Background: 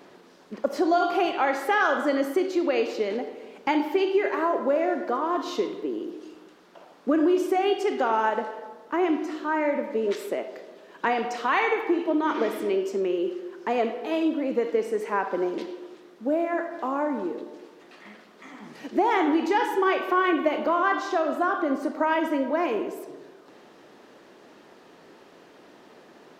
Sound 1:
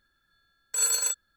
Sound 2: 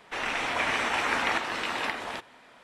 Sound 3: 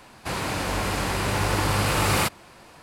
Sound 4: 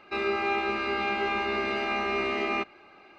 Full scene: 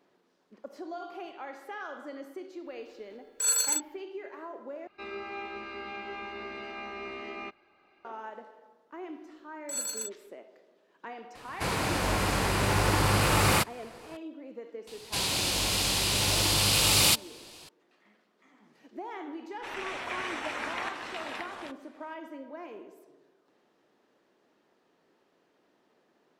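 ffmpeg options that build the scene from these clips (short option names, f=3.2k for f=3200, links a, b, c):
-filter_complex "[1:a]asplit=2[a][b];[3:a]asplit=2[c][d];[0:a]volume=-18dB[e];[d]highshelf=f=2.4k:t=q:w=1.5:g=11.5[f];[e]asplit=2[g][h];[g]atrim=end=4.874[i];[4:a]atrim=end=3.18,asetpts=PTS-STARTPTS,volume=-11.5dB[j];[h]atrim=start=8.046[k];[a]atrim=end=1.36,asetpts=PTS-STARTPTS,volume=-1dB,afade=t=in:d=0.004:c=hsin,afade=t=out:st=1.356:d=0.004:c=hsin,adelay=2660[l];[b]atrim=end=1.36,asetpts=PTS-STARTPTS,volume=-9.5dB,afade=t=in:d=0.004:c=hsin,afade=t=out:st=1.356:d=0.004:c=hsin,adelay=8950[m];[c]atrim=end=2.82,asetpts=PTS-STARTPTS,volume=-1.5dB,afade=t=in:d=0.004:c=hsin,afade=t=out:st=2.816:d=0.004:c=hsin,adelay=11350[n];[f]atrim=end=2.82,asetpts=PTS-STARTPTS,volume=-6.5dB,afade=t=in:d=0.004:c=hsin,afade=t=out:st=2.816:d=0.004:c=hsin,adelay=14870[o];[2:a]atrim=end=2.63,asetpts=PTS-STARTPTS,volume=-8.5dB,afade=t=in:d=0.004:c=hsin,afade=t=out:st=2.626:d=0.004:c=hsin,adelay=19510[p];[i][j]acrossfade=d=0.004:c1=hsin:c2=hsin[q];[q][k]acrossfade=d=0.004:c1=hsin:c2=hsin[r];[r][l][m][n][o][p]amix=inputs=6:normalize=0"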